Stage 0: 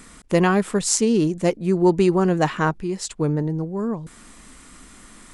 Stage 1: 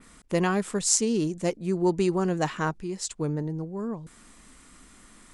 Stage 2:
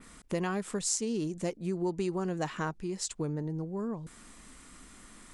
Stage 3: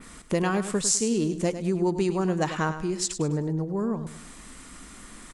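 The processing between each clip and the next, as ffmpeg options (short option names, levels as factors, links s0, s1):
-af "adynamicequalizer=threshold=0.00708:dfrequency=6900:dqfactor=0.83:tfrequency=6900:tqfactor=0.83:attack=5:release=100:ratio=0.375:range=3:mode=boostabove:tftype=bell,volume=0.447"
-af "acompressor=threshold=0.0251:ratio=2.5"
-af "aecho=1:1:102|204|306|408:0.282|0.0986|0.0345|0.0121,volume=2.24"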